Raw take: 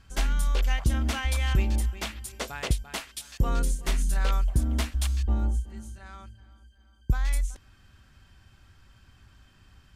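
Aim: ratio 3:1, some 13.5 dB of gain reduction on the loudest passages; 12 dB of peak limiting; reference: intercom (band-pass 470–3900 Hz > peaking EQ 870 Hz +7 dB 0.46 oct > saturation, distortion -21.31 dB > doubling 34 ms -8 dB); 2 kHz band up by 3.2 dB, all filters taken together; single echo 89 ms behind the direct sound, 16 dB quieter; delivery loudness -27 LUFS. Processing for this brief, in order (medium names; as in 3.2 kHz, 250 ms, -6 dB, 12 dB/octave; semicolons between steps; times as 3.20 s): peaking EQ 2 kHz +4 dB; compression 3:1, threshold -37 dBFS; peak limiter -35 dBFS; band-pass 470–3900 Hz; peaking EQ 870 Hz +7 dB 0.46 oct; delay 89 ms -16 dB; saturation -36.5 dBFS; doubling 34 ms -8 dB; trim +24.5 dB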